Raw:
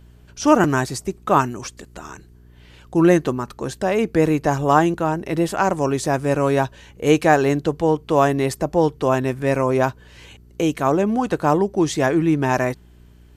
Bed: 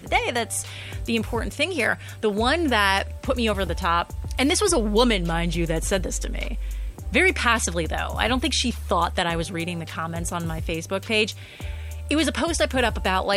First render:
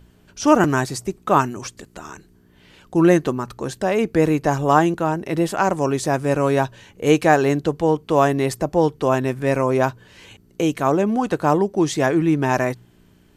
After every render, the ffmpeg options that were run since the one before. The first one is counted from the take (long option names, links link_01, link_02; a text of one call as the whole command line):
ffmpeg -i in.wav -af "bandreject=frequency=60:width_type=h:width=4,bandreject=frequency=120:width_type=h:width=4" out.wav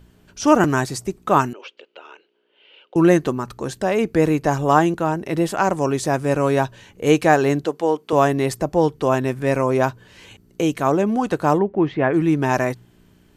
ffmpeg -i in.wav -filter_complex "[0:a]asettb=1/sr,asplit=3[link_01][link_02][link_03];[link_01]atrim=end=1.534[link_04];[link_02]atrim=start=1.53:end=2.96,asetpts=PTS-STARTPTS,afade=type=in:duration=0.004:curve=qsin,afade=type=out:start_time=1.426:duration=0.004:curve=qsin,highpass=frequency=460:width=0.5412,highpass=frequency=460:width=1.3066,equalizer=frequency=500:width_type=q:width=4:gain=4,equalizer=frequency=720:width_type=q:width=4:gain=-7,equalizer=frequency=1100:width_type=q:width=4:gain=-9,equalizer=frequency=1800:width_type=q:width=4:gain=-10,equalizer=frequency=2900:width_type=q:width=4:gain=9,lowpass=frequency=3300:width=0.5412,lowpass=frequency=3300:width=1.3066[link_05];[link_03]atrim=start=2.956[link_06];[link_04][link_05]acrossfade=duration=0.004:curve1=hsin:curve2=qsin[link_07];[link_07][link_06]acrossfade=duration=0.004:curve1=qsin:curve2=hsin,asettb=1/sr,asplit=3[link_08][link_09][link_10];[link_08]atrim=end=7.654[link_11];[link_09]atrim=start=7.65:end=8.13,asetpts=PTS-STARTPTS,afade=type=in:duration=0.004:curve=qsin,afade=type=out:start_time=0.476:duration=0.004:curve=qsin,highpass=310[link_12];[link_10]atrim=start=8.126[link_13];[link_11][link_12]acrossfade=duration=0.004:curve1=hsin:curve2=qsin[link_14];[link_14][link_13]acrossfade=duration=0.004:curve1=qsin:curve2=hsin,asplit=3[link_15][link_16][link_17];[link_15]afade=type=out:start_time=11.58:duration=0.02[link_18];[link_16]lowpass=frequency=2600:width=0.5412,lowpass=frequency=2600:width=1.3066,afade=type=in:start_time=11.58:duration=0.02,afade=type=out:start_time=12.13:duration=0.02[link_19];[link_17]afade=type=in:start_time=12.13:duration=0.02[link_20];[link_18][link_19][link_20]amix=inputs=3:normalize=0" out.wav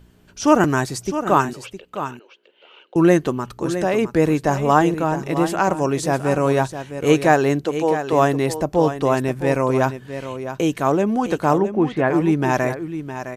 ffmpeg -i in.wav -af "aecho=1:1:661:0.299" out.wav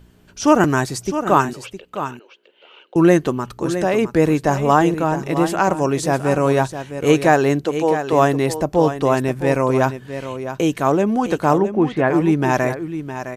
ffmpeg -i in.wav -af "volume=1.5dB,alimiter=limit=-2dB:level=0:latency=1" out.wav